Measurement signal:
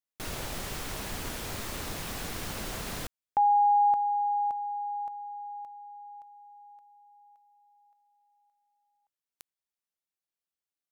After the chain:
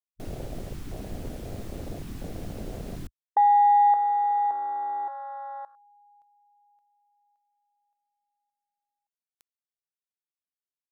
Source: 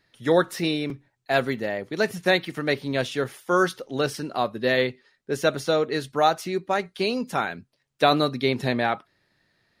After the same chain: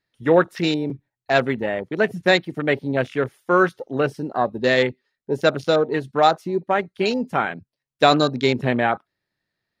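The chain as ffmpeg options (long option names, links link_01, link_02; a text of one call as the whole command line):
ffmpeg -i in.wav -af "afwtdn=0.0224,volume=4dB" out.wav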